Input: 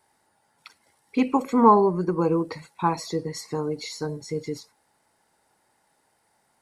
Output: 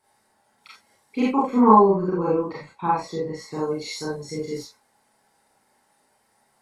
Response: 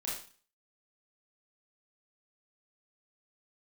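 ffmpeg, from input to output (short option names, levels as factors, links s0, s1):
-filter_complex "[0:a]asettb=1/sr,asplit=3[s0][s1][s2];[s0]atrim=end=1.284[s3];[s1]atrim=start=1.28:end=3.49,asetpts=PTS-STARTPTS,afade=t=in:d=0.004:c=qsin,afade=t=out:st=2.206:d=0.004:c=qsin,aemphasis=mode=reproduction:type=75kf[s4];[s2]atrim=start=3.486[s5];[s3][s4]acrossfade=d=0.004:c1=hsin:c2=qsin[s6];[s6][s5]acrossfade=d=0.004:c1=qsin:c2=hsin[s7];[1:a]atrim=start_sample=2205,atrim=end_sample=3528,asetrate=38367,aresample=44100[s8];[s7][s8]afir=irnorm=-1:irlink=0"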